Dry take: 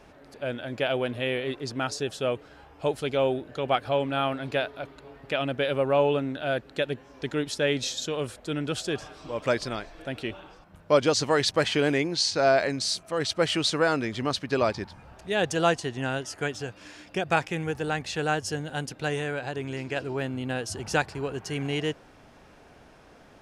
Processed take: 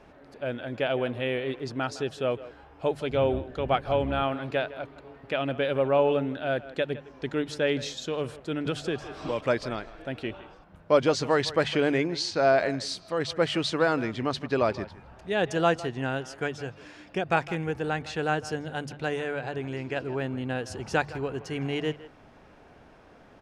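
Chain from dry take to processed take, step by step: 3.1–4.23 octaver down 2 oct, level -2 dB; high shelf 4700 Hz -11.5 dB; de-hum 48.7 Hz, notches 3; speakerphone echo 0.16 s, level -16 dB; 8.66–9.41 three-band squash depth 100%

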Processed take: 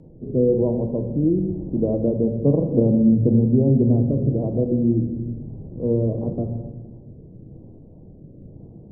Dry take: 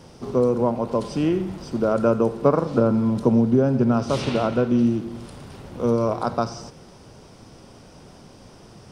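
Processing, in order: Gaussian blur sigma 17 samples; rotary speaker horn 1 Hz; on a send: reverb RT60 1.2 s, pre-delay 6 ms, DRR 5 dB; on the sum: gain +5 dB

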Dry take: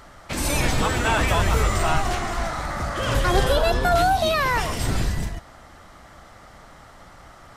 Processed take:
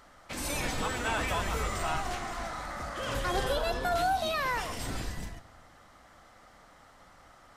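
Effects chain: low shelf 220 Hz -6 dB; on a send: reverb RT60 0.85 s, pre-delay 4 ms, DRR 13 dB; on the sum: gain -9 dB

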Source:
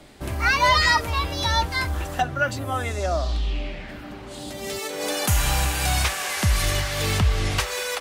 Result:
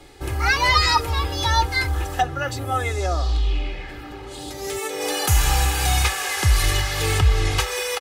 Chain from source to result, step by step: comb 2.4 ms, depth 76%

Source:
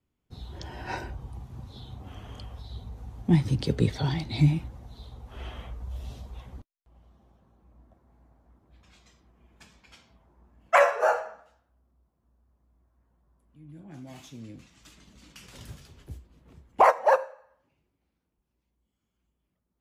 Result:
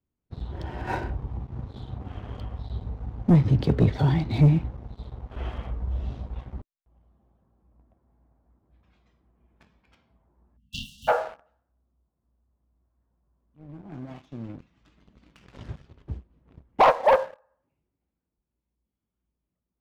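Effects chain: tape spacing loss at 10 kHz 31 dB; sample leveller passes 2; spectral delete 10.57–11.08, 260–2700 Hz

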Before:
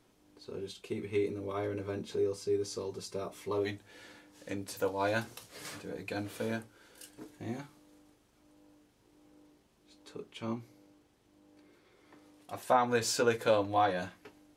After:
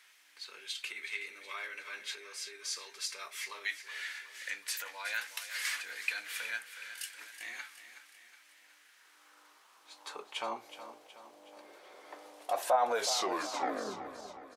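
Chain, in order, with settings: tape stop at the end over 1.68 s; in parallel at +2.5 dB: compressor, threshold -43 dBFS, peak gain reduction 20 dB; on the sum: limiter -24.5 dBFS, peak gain reduction 11.5 dB; high-pass sweep 1900 Hz -> 630 Hz, 8.63–10.84; on a send: feedback echo 0.37 s, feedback 51%, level -12 dB; on the sum: gain +1.5 dB

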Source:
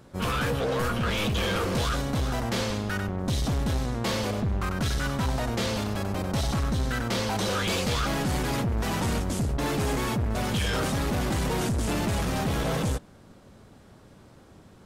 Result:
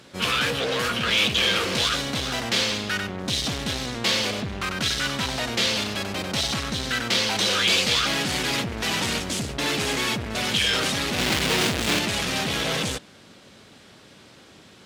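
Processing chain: 11.18–11.99 half-waves squared off; weighting filter D; in parallel at -8.5 dB: hard clip -37 dBFS, distortion -2 dB

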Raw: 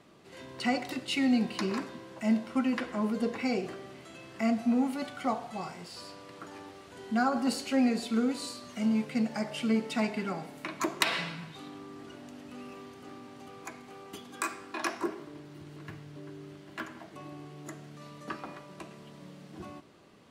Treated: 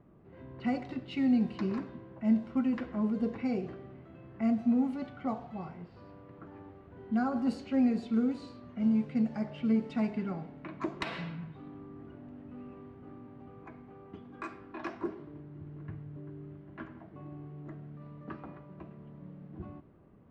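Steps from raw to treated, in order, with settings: low-pass opened by the level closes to 1600 Hz, open at -24 dBFS; RIAA curve playback; gain -7 dB

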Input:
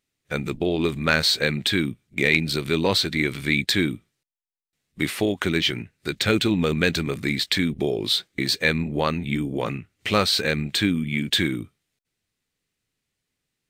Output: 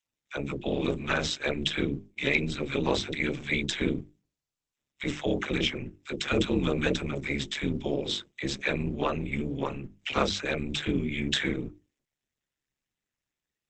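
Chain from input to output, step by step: Butterworth band-stop 4400 Hz, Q 4.3; dispersion lows, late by 59 ms, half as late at 630 Hz; AM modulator 140 Hz, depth 100%; bell 1800 Hz -4.5 dB 0.24 oct, from 11.07 s +4 dB; notches 50/100/150/200/250/300/350/400 Hz; Opus 10 kbps 48000 Hz

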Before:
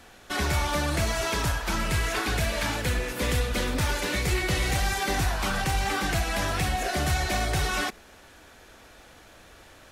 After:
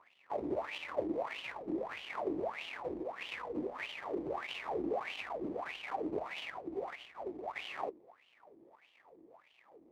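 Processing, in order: high shelf 3200 Hz +11.5 dB; 6.49–7.56 negative-ratio compressor -28 dBFS, ratio -0.5; sample-rate reducer 1500 Hz, jitter 20%; wah 1.6 Hz 310–3000 Hz, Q 8.6

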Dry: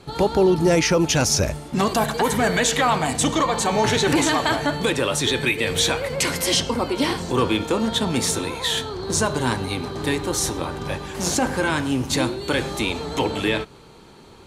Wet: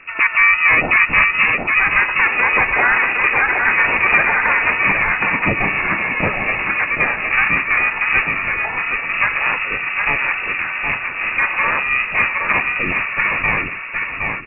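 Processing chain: inverted band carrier 2700 Hz; on a send: feedback echo 0.765 s, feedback 25%, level -4 dB; on the sum: harmoniser -12 st -10 dB, -4 st -6 dB; gain +2.5 dB

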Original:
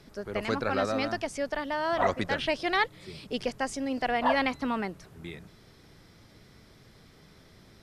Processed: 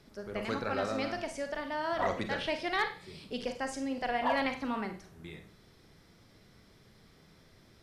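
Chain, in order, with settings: Schroeder reverb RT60 0.38 s, combs from 33 ms, DRR 6 dB; overloaded stage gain 15 dB; gain -5.5 dB

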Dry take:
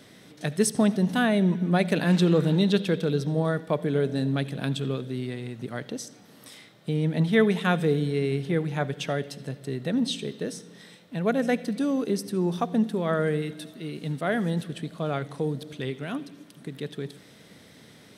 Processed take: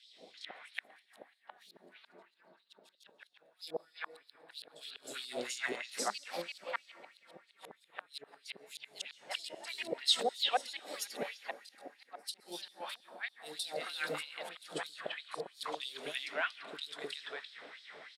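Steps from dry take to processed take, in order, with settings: doubler 20 ms -13.5 dB; echoes that change speed 0.161 s, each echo +2 st, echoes 2, each echo -6 dB; compressor 6:1, threshold -25 dBFS, peak gain reduction 10.5 dB; low-pass opened by the level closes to 2700 Hz, open at -26.5 dBFS; flipped gate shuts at -20 dBFS, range -40 dB; notch 6100 Hz, Q 8.3; three bands offset in time highs, lows, mids 60/340 ms, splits 650/3400 Hz; plate-style reverb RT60 4.3 s, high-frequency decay 0.55×, pre-delay 0.11 s, DRR 15.5 dB; LFO high-pass sine 3.1 Hz 590–4300 Hz; gain +3.5 dB

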